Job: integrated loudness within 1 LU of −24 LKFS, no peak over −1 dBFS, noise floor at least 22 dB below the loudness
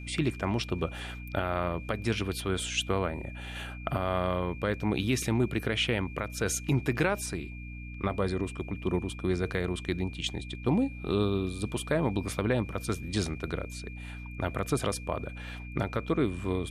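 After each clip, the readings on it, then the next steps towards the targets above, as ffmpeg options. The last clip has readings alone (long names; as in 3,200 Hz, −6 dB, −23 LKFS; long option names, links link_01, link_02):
mains hum 60 Hz; hum harmonics up to 300 Hz; level of the hum −38 dBFS; interfering tone 2,400 Hz; level of the tone −47 dBFS; integrated loudness −31.5 LKFS; sample peak −12.5 dBFS; target loudness −24.0 LKFS
→ -af "bandreject=frequency=60:width_type=h:width=6,bandreject=frequency=120:width_type=h:width=6,bandreject=frequency=180:width_type=h:width=6,bandreject=frequency=240:width_type=h:width=6,bandreject=frequency=300:width_type=h:width=6"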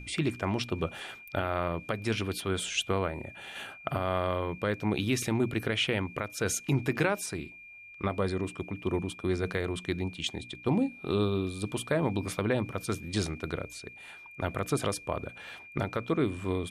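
mains hum none found; interfering tone 2,400 Hz; level of the tone −47 dBFS
→ -af "bandreject=frequency=2400:width=30"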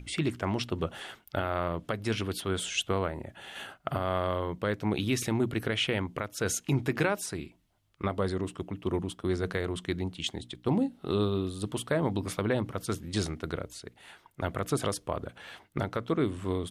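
interfering tone none found; integrated loudness −32.0 LKFS; sample peak −13.0 dBFS; target loudness −24.0 LKFS
→ -af "volume=8dB"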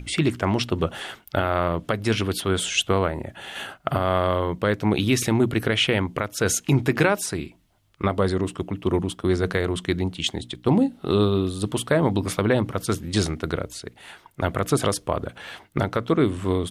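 integrated loudness −24.0 LKFS; sample peak −5.0 dBFS; background noise floor −56 dBFS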